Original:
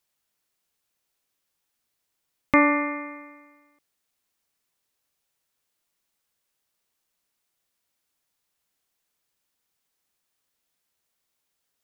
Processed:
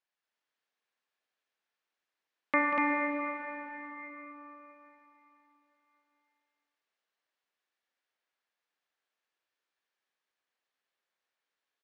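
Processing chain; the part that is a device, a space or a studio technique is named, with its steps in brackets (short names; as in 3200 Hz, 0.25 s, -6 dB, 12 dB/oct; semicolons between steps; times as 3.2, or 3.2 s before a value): station announcement (BPF 360–3500 Hz; bell 1700 Hz +5 dB 0.23 oct; loudspeakers at several distances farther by 65 m -9 dB, 83 m -2 dB; reverb RT60 3.9 s, pre-delay 35 ms, DRR 2.5 dB); gain -8 dB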